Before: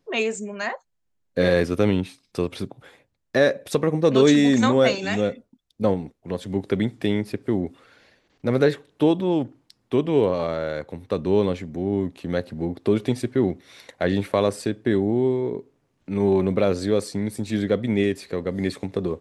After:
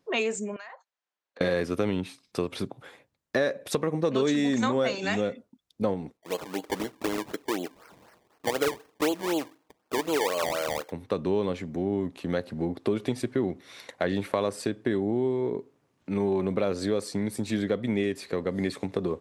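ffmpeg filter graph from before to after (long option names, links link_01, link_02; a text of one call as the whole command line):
ffmpeg -i in.wav -filter_complex "[0:a]asettb=1/sr,asplit=3[link_01][link_02][link_03];[link_01]atrim=end=0.564[link_04];[link_02]atrim=start=0.56:end=1.41,asetpts=PTS-STARTPTS,afade=type=in:duration=0.004:curve=qsin,afade=type=out:start_time=0.846:duration=0.004:curve=qsin,acompressor=threshold=-38dB:ratio=16:attack=3.2:release=140:knee=1:detection=peak,highpass=680,lowpass=5100[link_05];[link_03]atrim=start=1.406[link_06];[link_04][link_05]acrossfade=duration=0.004:curve1=hsin:curve2=qsin[link_07];[link_07][link_06]acrossfade=duration=0.004:curve1=qsin:curve2=hsin,asettb=1/sr,asplit=3[link_08][link_09][link_10];[link_08]atrim=end=6.174[link_11];[link_09]atrim=start=6.17:end=10.91,asetpts=PTS-STARTPTS,afade=type=in:duration=0.004:curve=qsin,afade=type=out:start_time=4.736:duration=0.004:curve=qsin,highpass=410,aecho=1:1:6.4:0.41,atrim=end_sample=209034,acrusher=samples=23:mix=1:aa=0.000001:lfo=1:lforange=23:lforate=4[link_12];[link_10]atrim=start=10.906[link_13];[link_11][link_12]acrossfade=duration=0.004:curve1=hsin:curve2=qsin[link_14];[link_14][link_13]acrossfade=duration=0.004:curve1=qsin:curve2=hsin,highpass=frequency=120:poles=1,equalizer=frequency=1100:width_type=o:width=0.77:gain=2.5,acompressor=threshold=-24dB:ratio=3" out.wav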